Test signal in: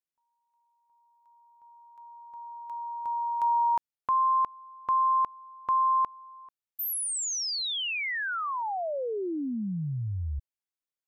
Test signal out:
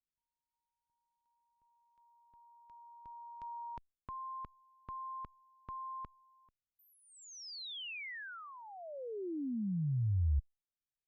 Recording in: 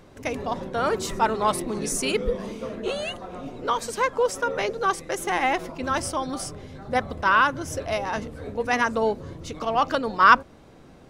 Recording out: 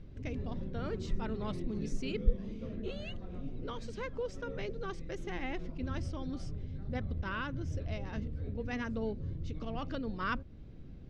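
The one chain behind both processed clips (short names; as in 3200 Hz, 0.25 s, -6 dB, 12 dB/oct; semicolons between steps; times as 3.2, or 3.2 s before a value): passive tone stack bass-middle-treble 10-0-1; in parallel at 0 dB: compressor, threshold -53 dBFS; on the sum: air absorption 190 m; gain +8.5 dB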